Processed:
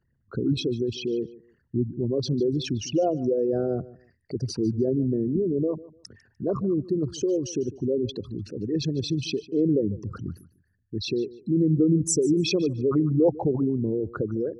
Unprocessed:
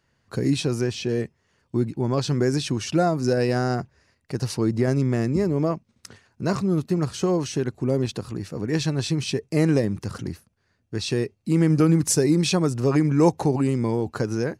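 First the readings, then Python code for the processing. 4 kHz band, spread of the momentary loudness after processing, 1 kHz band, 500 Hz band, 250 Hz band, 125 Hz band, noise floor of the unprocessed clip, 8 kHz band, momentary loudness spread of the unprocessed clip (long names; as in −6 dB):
−3.0 dB, 11 LU, −9.0 dB, −1.0 dB, −2.0 dB, −5.5 dB, −70 dBFS, −3.5 dB, 11 LU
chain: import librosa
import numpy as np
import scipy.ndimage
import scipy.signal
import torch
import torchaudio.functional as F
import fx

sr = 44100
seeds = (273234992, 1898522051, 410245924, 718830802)

y = fx.envelope_sharpen(x, sr, power=3.0)
y = fx.echo_feedback(y, sr, ms=149, feedback_pct=22, wet_db=-19)
y = F.gain(torch.from_numpy(y), -2.5).numpy()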